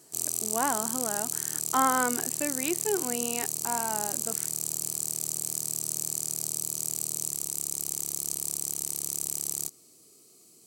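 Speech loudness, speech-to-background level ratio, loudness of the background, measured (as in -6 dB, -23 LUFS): -31.5 LUFS, -2.0 dB, -29.5 LUFS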